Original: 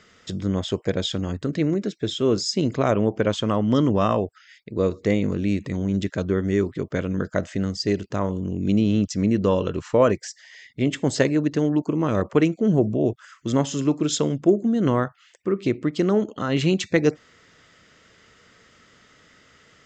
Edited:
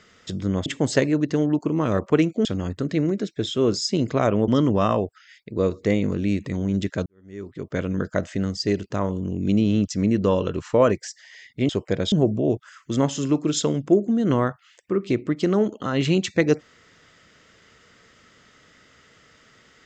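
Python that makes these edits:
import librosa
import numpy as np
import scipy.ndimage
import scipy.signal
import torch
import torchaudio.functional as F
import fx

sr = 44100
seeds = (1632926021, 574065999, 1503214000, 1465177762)

y = fx.edit(x, sr, fx.swap(start_s=0.66, length_s=0.43, other_s=10.89, other_length_s=1.79),
    fx.cut(start_s=3.12, length_s=0.56),
    fx.fade_in_span(start_s=6.26, length_s=0.74, curve='qua'), tone=tone)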